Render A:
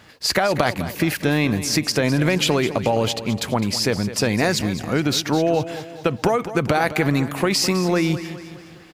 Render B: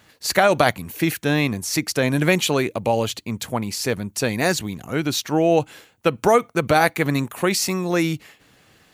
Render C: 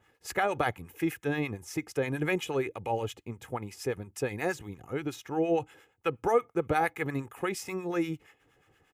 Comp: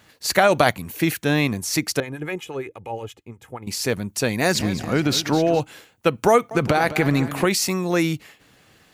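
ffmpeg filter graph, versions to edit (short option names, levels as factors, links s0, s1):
-filter_complex "[0:a]asplit=2[s0][s1];[1:a]asplit=4[s2][s3][s4][s5];[s2]atrim=end=2.002[s6];[2:a]atrim=start=1.998:end=3.672[s7];[s3]atrim=start=3.668:end=4.552[s8];[s0]atrim=start=4.548:end=5.602[s9];[s4]atrim=start=5.598:end=6.512[s10];[s1]atrim=start=6.508:end=7.452[s11];[s5]atrim=start=7.448[s12];[s6][s7]acrossfade=d=0.004:c1=hsin:c2=hsin[s13];[s13][s8]acrossfade=d=0.004:c1=hsin:c2=hsin[s14];[s14][s9]acrossfade=d=0.004:c1=hsin:c2=hsin[s15];[s15][s10]acrossfade=d=0.004:c1=hsin:c2=hsin[s16];[s16][s11]acrossfade=d=0.004:c1=hsin:c2=hsin[s17];[s17][s12]acrossfade=d=0.004:c1=hsin:c2=hsin"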